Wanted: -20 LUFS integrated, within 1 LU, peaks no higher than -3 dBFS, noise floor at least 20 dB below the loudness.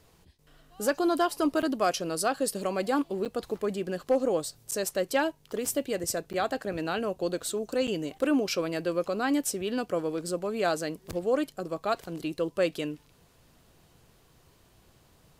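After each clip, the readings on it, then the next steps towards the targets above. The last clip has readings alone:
dropouts 6; longest dropout 8.0 ms; loudness -29.5 LUFS; peak level -15.5 dBFS; loudness target -20.0 LUFS
-> interpolate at 1.62/3.25/4.71/6.33/7.87/11.12 s, 8 ms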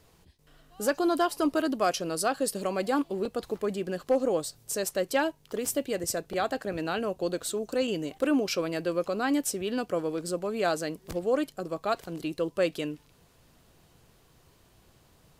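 dropouts 0; loudness -29.5 LUFS; peak level -15.5 dBFS; loudness target -20.0 LUFS
-> trim +9.5 dB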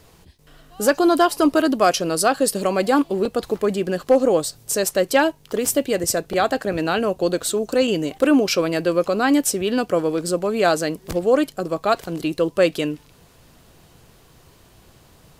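loudness -20.0 LUFS; peak level -6.0 dBFS; noise floor -52 dBFS

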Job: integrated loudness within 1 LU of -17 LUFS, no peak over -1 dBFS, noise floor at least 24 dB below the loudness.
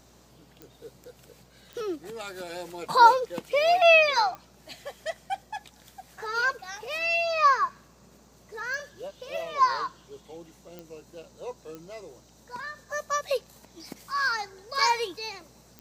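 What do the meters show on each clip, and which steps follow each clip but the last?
clicks found 7; hum 60 Hz; highest harmonic 180 Hz; hum level -61 dBFS; loudness -25.0 LUFS; peak level -4.5 dBFS; loudness target -17.0 LUFS
-> de-click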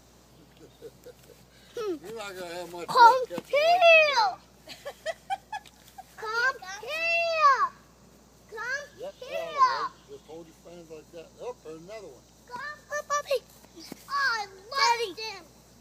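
clicks found 0; hum 60 Hz; highest harmonic 180 Hz; hum level -61 dBFS
-> de-hum 60 Hz, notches 3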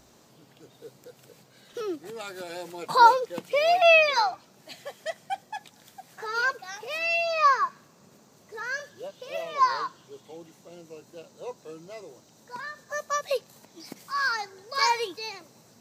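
hum not found; loudness -25.0 LUFS; peak level -4.5 dBFS; loudness target -17.0 LUFS
-> trim +8 dB; peak limiter -1 dBFS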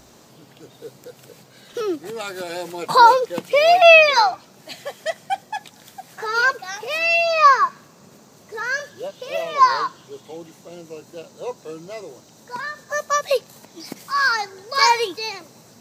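loudness -17.5 LUFS; peak level -1.0 dBFS; noise floor -50 dBFS

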